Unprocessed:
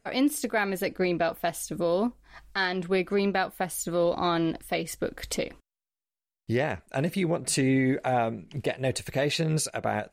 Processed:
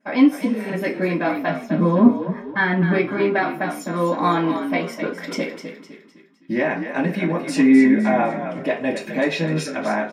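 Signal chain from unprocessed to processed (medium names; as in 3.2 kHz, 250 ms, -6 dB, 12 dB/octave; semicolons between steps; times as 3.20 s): 0.38–0.67 s: spectral replace 570–10000 Hz both; 1.49–2.93 s: tone controls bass +14 dB, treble -14 dB; frequency-shifting echo 255 ms, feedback 41%, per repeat -51 Hz, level -9 dB; reverberation RT60 0.35 s, pre-delay 3 ms, DRR -12.5 dB; trim -6.5 dB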